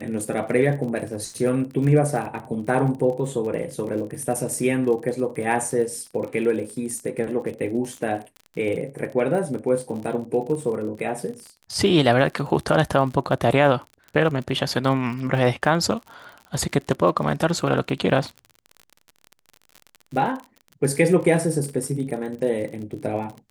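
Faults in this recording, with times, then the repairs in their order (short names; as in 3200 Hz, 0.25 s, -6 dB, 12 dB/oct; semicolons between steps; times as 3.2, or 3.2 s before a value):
crackle 42/s -31 dBFS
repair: de-click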